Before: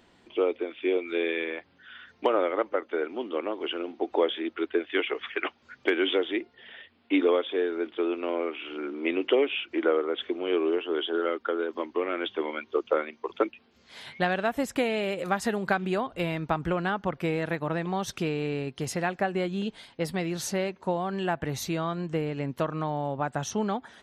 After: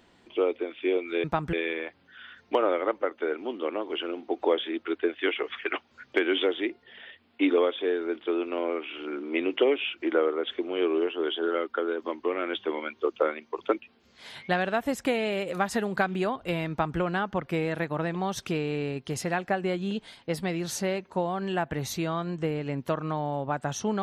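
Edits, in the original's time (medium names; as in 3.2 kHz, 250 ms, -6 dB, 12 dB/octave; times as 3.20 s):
16.41–16.70 s: copy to 1.24 s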